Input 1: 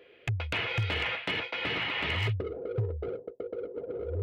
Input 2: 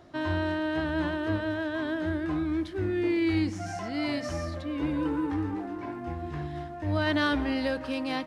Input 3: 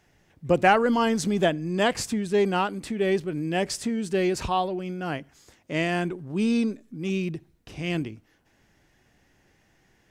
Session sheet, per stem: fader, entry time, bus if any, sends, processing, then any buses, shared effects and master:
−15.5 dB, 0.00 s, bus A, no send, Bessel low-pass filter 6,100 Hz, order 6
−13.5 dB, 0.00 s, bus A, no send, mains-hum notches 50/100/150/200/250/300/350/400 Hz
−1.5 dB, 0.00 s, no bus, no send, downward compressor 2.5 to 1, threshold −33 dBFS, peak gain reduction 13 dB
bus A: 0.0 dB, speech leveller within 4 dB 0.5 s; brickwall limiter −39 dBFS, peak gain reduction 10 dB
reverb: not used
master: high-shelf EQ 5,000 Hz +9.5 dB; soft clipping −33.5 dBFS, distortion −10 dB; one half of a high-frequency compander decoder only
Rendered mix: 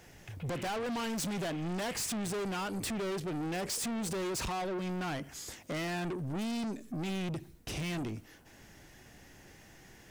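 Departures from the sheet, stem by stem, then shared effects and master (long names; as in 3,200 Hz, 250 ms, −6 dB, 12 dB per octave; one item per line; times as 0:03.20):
stem 2: muted
stem 3 −1.5 dB → +7.5 dB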